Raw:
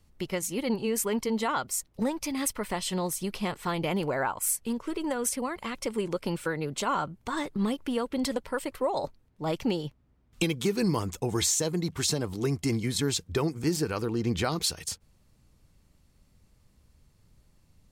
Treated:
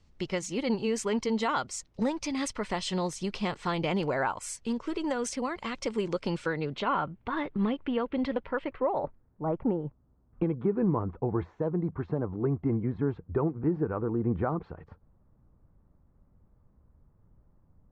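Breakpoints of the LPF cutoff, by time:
LPF 24 dB/oct
6.39 s 6700 Hz
6.95 s 3000 Hz
8.6 s 3000 Hz
9.48 s 1300 Hz

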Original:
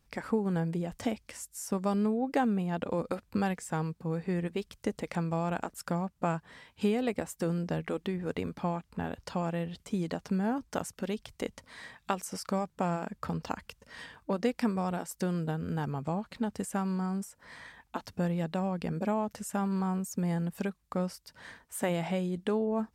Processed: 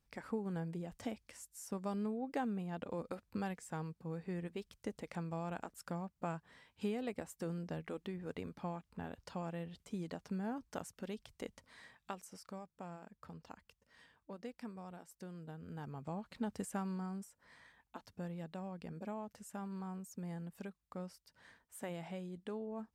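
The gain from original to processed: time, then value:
11.69 s -10 dB
12.68 s -18 dB
15.34 s -18 dB
16.53 s -6 dB
17.6 s -13.5 dB

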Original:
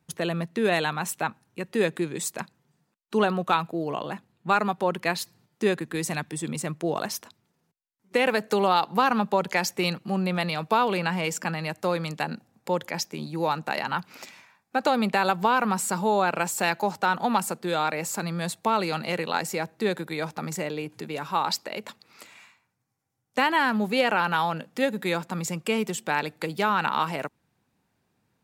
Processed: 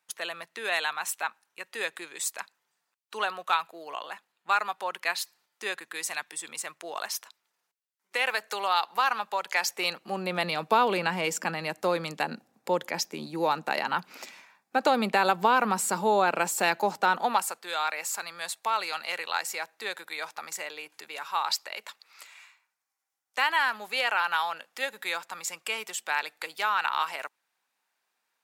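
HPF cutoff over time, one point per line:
9.48 s 990 Hz
10.48 s 250 Hz
17.09 s 250 Hz
17.57 s 990 Hz

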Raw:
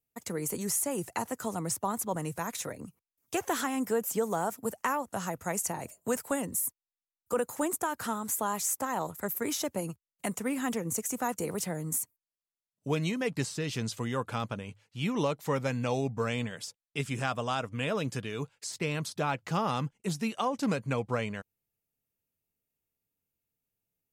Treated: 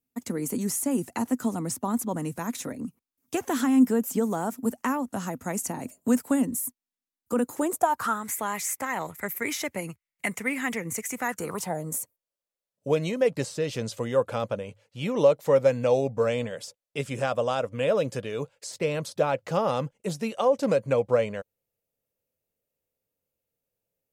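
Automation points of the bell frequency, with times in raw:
bell +15 dB 0.55 oct
7.44 s 250 Hz
8.26 s 2100 Hz
11.23 s 2100 Hz
11.89 s 540 Hz

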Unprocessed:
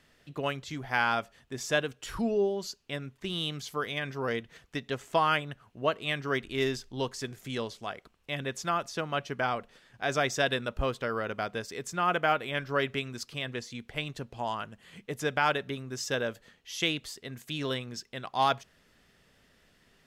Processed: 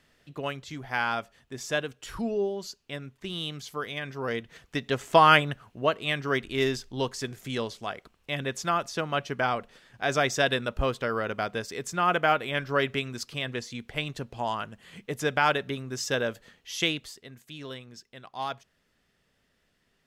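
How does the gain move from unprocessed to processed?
4.11 s -1 dB
5.39 s +9.5 dB
5.87 s +3 dB
16.82 s +3 dB
17.41 s -7.5 dB

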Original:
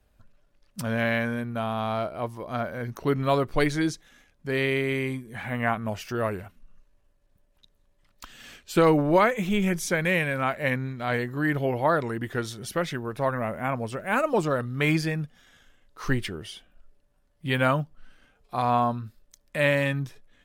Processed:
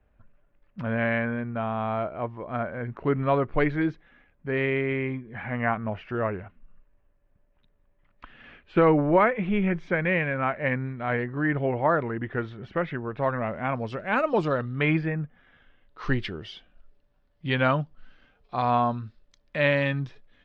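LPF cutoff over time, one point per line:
LPF 24 dB/oct
12.99 s 2500 Hz
13.55 s 4600 Hz
14.54 s 4600 Hz
15.18 s 2000 Hz
16.18 s 4500 Hz

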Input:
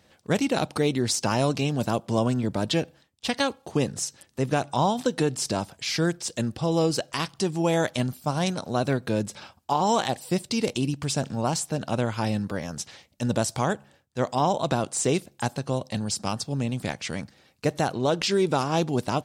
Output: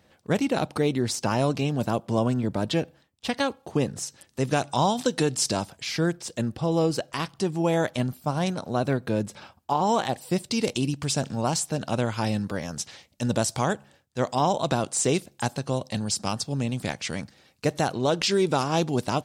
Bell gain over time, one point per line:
bell 6400 Hz 2.4 oct
3.99 s -4.5 dB
4.45 s +4.5 dB
5.53 s +4.5 dB
5.96 s -5 dB
10.04 s -5 dB
10.66 s +2 dB

